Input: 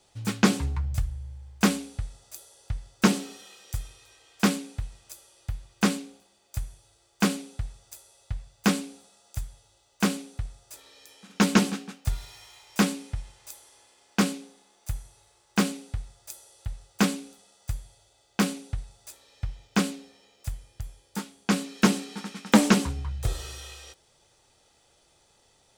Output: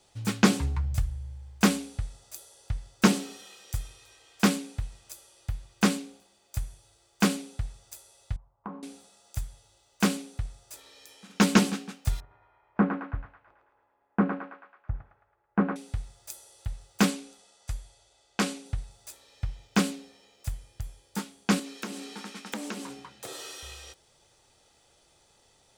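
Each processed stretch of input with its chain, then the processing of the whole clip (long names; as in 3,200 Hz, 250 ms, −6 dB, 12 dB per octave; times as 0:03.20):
0:08.36–0:08.83: transistor ladder low-pass 1,100 Hz, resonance 70% + downward compressor 4 to 1, threshold −34 dBFS
0:12.20–0:15.76: mu-law and A-law mismatch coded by A + low-pass filter 1,500 Hz 24 dB per octave + feedback echo with a high-pass in the loop 109 ms, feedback 61%, high-pass 650 Hz, level −3 dB
0:17.10–0:18.66: low-pass filter 10,000 Hz + parametric band 140 Hz −7 dB 1.8 octaves
0:21.59–0:23.63: high-pass filter 220 Hz 24 dB per octave + downward compressor 4 to 1, threshold −35 dBFS
whole clip: no processing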